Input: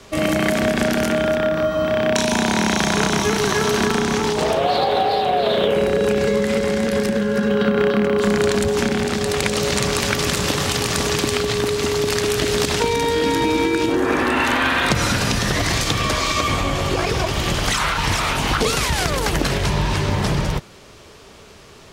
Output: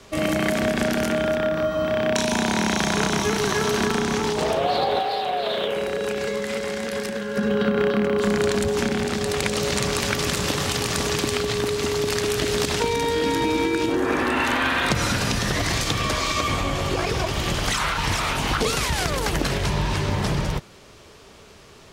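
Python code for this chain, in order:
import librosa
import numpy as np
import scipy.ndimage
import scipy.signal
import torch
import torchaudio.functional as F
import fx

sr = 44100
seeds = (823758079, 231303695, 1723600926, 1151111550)

y = fx.low_shelf(x, sr, hz=410.0, db=-10.0, at=(4.99, 7.37))
y = y * 10.0 ** (-3.5 / 20.0)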